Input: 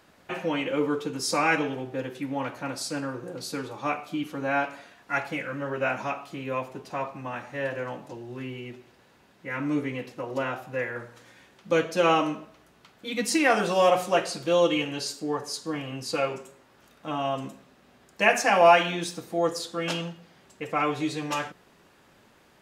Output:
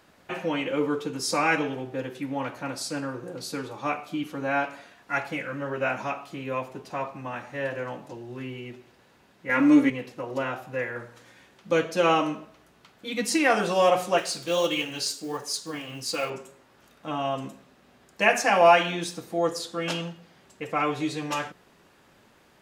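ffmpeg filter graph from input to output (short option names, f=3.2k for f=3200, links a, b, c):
-filter_complex "[0:a]asettb=1/sr,asplit=3[a][b][c];[a]atrim=end=9.494[d];[b]atrim=start=9.49:end=9.9,asetpts=PTS-STARTPTS,afade=t=in:d=0.004:c=qsin,afade=t=out:st=0.406:d=0.004:c=qsin,aecho=1:1:3.6:0.69,atrim=end_sample=18081,acontrast=67[e];[c]atrim=start=9.896[f];[d][e]acrossfade=d=0.004:c1=hsin:c2=qsin[g];[g][f]acrossfade=d=0.004:c1=qsin:c2=hsin,asettb=1/sr,asplit=3[h][i][j];[h]atrim=end=14.184[k];[i]atrim=start=14.18:end=16.3,asetpts=PTS-STARTPTS,afade=t=in:d=0.004:c=qsin,afade=t=out:st=2.116:d=0.004:c=qsin,highshelf=f=2.3k:g=9.5,flanger=delay=2.7:depth=9:regen=-57:speed=1.5:shape=triangular,acrusher=bits=6:mode=log:mix=0:aa=0.000001[l];[j]atrim=start=16.296[m];[k][l]acrossfade=d=0.004:c1=hsin:c2=qsin[n];[n][m]acrossfade=d=0.004:c1=qsin:c2=hsin"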